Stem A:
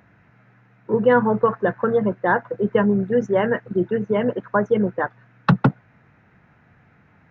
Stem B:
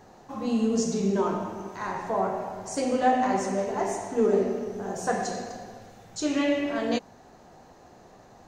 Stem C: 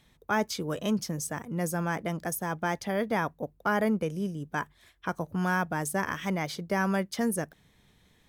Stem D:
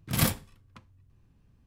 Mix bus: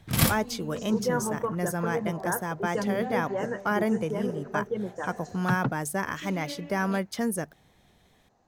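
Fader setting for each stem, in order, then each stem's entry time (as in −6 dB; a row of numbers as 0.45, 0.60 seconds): −12.0, −16.0, 0.0, +2.5 decibels; 0.00, 0.00, 0.00, 0.00 seconds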